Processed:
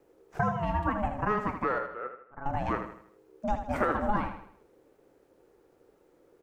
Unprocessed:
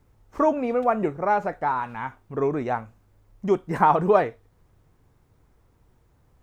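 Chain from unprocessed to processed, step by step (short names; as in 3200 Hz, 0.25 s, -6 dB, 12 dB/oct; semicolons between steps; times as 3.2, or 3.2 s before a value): compressor 6:1, threshold -22 dBFS, peak gain reduction 10 dB; 1.78–2.46 band-pass 830 Hz, Q 3.2; ring modulator 420 Hz; wow and flutter 21 cents; feedback echo 79 ms, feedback 42%, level -8.5 dB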